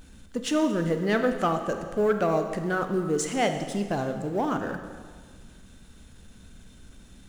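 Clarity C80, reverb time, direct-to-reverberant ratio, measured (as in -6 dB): 9.0 dB, 1.6 s, 6.5 dB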